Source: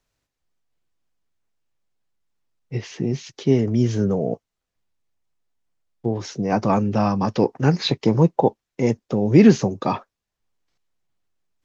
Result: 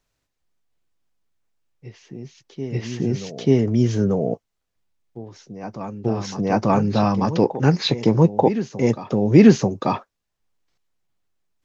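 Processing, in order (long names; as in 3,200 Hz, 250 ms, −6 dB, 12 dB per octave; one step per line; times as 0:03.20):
backwards echo 888 ms −13.5 dB
level +1 dB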